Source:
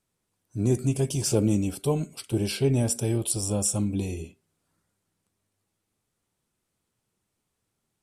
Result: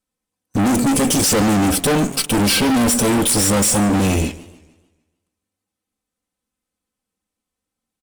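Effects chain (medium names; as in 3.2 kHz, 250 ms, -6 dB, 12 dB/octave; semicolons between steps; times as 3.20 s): comb 3.9 ms, depth 86%; in parallel at -2 dB: peak limiter -19 dBFS, peak gain reduction 9.5 dB; on the sum: waveshaping leveller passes 5; one-sided clip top -18 dBFS, bottom -10.5 dBFS; modulated delay 149 ms, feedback 43%, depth 199 cents, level -18.5 dB; trim -1 dB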